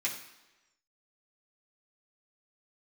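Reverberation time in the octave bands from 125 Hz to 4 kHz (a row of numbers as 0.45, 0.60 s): 0.85, 1.0, 1.1, 1.1, 1.0, 1.0 s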